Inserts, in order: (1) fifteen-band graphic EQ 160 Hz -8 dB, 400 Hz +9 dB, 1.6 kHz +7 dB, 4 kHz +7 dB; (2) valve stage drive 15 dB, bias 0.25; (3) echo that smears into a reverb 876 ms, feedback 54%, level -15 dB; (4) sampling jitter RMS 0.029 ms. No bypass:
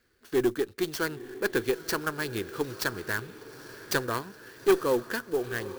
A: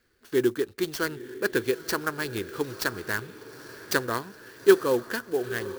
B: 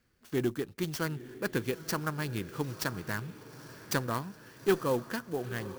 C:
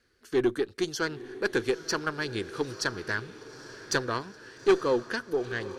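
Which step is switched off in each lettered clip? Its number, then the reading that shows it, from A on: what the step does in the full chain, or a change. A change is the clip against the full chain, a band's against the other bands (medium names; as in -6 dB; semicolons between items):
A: 2, crest factor change +6.5 dB; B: 1, crest factor change +2.0 dB; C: 4, 4 kHz band +1.5 dB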